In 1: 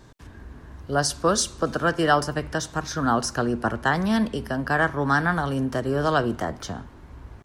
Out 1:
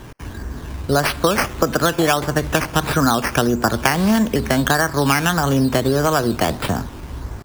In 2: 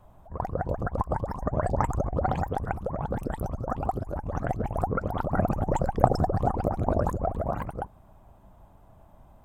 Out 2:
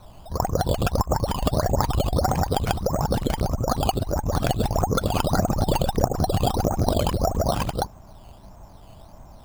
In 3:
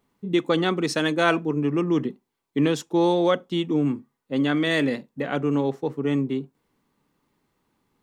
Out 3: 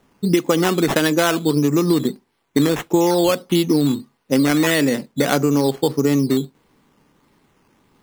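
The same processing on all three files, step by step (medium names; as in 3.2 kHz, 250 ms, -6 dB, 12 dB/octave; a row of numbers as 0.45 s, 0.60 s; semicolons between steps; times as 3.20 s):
compression 12:1, threshold -25 dBFS; decimation with a swept rate 9×, swing 60% 1.6 Hz; peak normalisation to -2 dBFS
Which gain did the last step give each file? +12.5 dB, +8.5 dB, +12.5 dB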